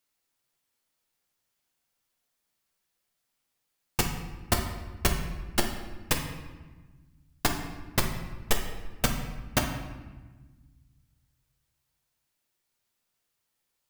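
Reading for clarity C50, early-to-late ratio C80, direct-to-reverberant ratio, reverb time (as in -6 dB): 6.0 dB, 8.0 dB, 2.0 dB, 1.3 s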